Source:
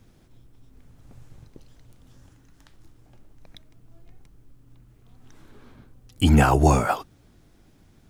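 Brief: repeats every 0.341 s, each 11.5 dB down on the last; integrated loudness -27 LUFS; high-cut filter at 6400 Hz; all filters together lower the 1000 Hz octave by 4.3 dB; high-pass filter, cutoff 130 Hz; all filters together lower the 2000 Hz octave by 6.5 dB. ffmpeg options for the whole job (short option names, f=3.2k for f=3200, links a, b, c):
-af "highpass=130,lowpass=6.4k,equalizer=f=1k:t=o:g=-4.5,equalizer=f=2k:t=o:g=-7.5,aecho=1:1:341|682|1023:0.266|0.0718|0.0194,volume=-3.5dB"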